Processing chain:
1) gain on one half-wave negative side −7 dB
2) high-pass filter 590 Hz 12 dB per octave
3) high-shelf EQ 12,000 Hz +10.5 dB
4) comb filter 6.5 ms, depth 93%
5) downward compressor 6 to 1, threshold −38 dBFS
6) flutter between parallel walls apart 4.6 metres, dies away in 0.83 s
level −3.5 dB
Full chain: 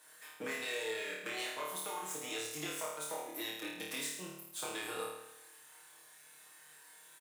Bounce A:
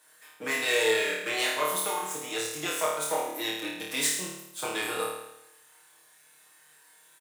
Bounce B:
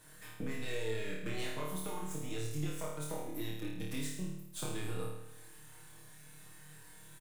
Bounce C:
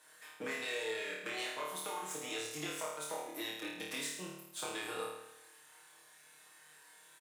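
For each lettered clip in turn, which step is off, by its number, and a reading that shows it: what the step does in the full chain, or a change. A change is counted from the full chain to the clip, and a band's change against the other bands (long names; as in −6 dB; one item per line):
5, change in crest factor +2.5 dB
2, 125 Hz band +21.0 dB
3, 8 kHz band −2.0 dB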